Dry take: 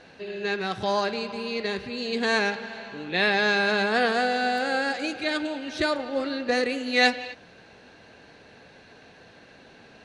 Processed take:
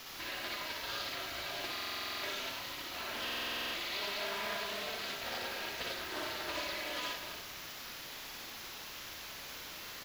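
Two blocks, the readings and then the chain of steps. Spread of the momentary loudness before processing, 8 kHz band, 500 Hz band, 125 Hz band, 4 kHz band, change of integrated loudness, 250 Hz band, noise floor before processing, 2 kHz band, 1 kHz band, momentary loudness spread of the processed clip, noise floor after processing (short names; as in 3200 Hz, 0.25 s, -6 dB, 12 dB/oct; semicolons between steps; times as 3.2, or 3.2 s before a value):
11 LU, -1.0 dB, -17.5 dB, -13.5 dB, -6.5 dB, -13.5 dB, -20.5 dB, -52 dBFS, -13.5 dB, -14.0 dB, 8 LU, -47 dBFS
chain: spectral gate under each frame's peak -20 dB weak; bell 510 Hz +6.5 dB 0.49 oct; comb 3.1 ms, depth 61%; compressor 2.5:1, threshold -50 dBFS, peak gain reduction 14 dB; added noise blue -46 dBFS; bit-crush 8-bit; running mean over 5 samples; loudspeakers at several distances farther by 20 m -2 dB, 32 m -5 dB; stuck buffer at 1.72/3.23, samples 2048, times 10; Doppler distortion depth 0.21 ms; gain +7 dB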